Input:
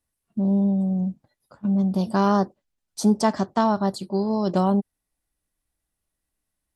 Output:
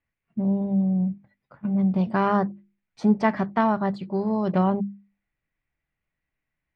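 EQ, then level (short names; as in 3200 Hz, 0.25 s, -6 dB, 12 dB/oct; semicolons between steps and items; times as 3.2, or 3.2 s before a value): synth low-pass 2200 Hz, resonance Q 3.6; bell 140 Hz +7.5 dB 0.8 oct; notches 50/100/150/200/250/300/350 Hz; -2.5 dB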